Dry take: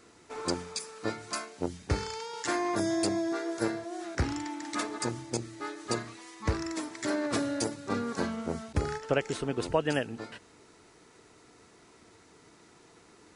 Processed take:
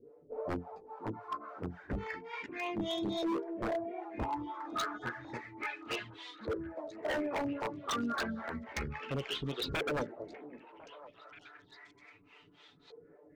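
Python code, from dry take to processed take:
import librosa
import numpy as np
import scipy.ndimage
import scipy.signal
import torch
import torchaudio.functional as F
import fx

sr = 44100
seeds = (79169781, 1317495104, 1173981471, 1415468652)

p1 = fx.harmonic_tremolo(x, sr, hz=3.6, depth_pct=100, crossover_hz=420.0)
p2 = 10.0 ** (-30.5 / 20.0) * np.tanh(p1 / 10.0 ** (-30.5 / 20.0))
p3 = p1 + (p2 * 10.0 ** (-6.0 / 20.0))
p4 = fx.env_flanger(p3, sr, rest_ms=8.0, full_db=-28.5)
p5 = fx.filter_lfo_lowpass(p4, sr, shape='saw_up', hz=0.31, low_hz=450.0, high_hz=4000.0, q=7.9)
p6 = fx.chorus_voices(p5, sr, voices=2, hz=0.17, base_ms=13, depth_ms=3.3, mix_pct=30)
p7 = 10.0 ** (-28.5 / 20.0) * (np.abs((p6 / 10.0 ** (-28.5 / 20.0) + 3.0) % 4.0 - 2.0) - 1.0)
p8 = p7 + fx.echo_stepped(p7, sr, ms=526, hz=290.0, octaves=1.4, feedback_pct=70, wet_db=-10, dry=0)
y = fx.band_widen(p8, sr, depth_pct=100, at=(2.46, 2.88))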